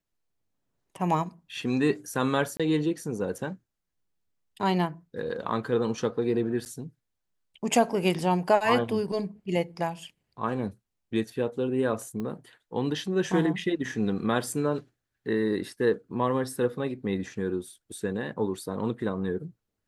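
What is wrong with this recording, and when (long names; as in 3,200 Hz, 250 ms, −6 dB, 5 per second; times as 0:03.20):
0:02.57–0:02.60: drop-out 26 ms
0:06.65–0:06.66: drop-out 9.3 ms
0:12.20: click −23 dBFS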